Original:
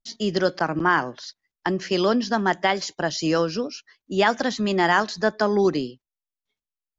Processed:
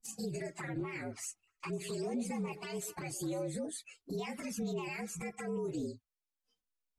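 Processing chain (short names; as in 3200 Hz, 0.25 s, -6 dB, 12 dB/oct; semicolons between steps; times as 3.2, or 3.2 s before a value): inharmonic rescaling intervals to 116%; compressor 6:1, threshold -36 dBFS, peak gain reduction 17.5 dB; limiter -35.5 dBFS, peak gain reduction 10.5 dB; envelope flanger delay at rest 4.1 ms, full sweep at -39 dBFS; 1.22–3.48 delay with a stepping band-pass 0.127 s, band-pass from 460 Hz, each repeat 1.4 oct, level -9.5 dB; gain +6.5 dB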